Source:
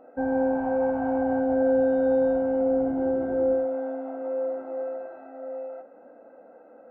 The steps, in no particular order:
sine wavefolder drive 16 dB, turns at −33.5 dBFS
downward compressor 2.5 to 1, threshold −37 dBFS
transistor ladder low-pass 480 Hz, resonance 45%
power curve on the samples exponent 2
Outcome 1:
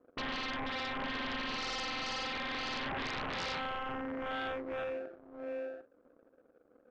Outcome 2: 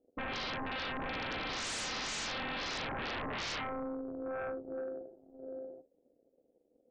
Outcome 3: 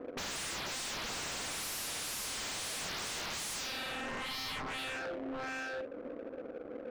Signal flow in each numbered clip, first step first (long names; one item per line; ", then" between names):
transistor ladder low-pass, then downward compressor, then power curve on the samples, then sine wavefolder
power curve on the samples, then transistor ladder low-pass, then sine wavefolder, then downward compressor
transistor ladder low-pass, then sine wavefolder, then power curve on the samples, then downward compressor